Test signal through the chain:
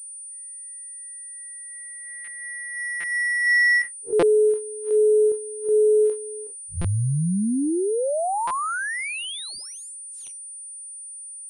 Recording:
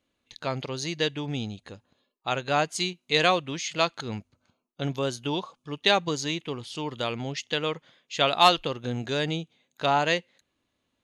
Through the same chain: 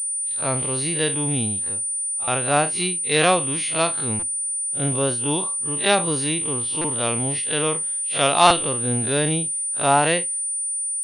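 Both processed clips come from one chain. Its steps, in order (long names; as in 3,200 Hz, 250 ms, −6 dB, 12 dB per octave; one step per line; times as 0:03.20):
spectrum smeared in time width 84 ms
buffer that repeats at 0:02.24/0:03.00/0:04.19/0:06.81/0:08.47/0:10.34, samples 256, times 5
switching amplifier with a slow clock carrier 9,300 Hz
level +7 dB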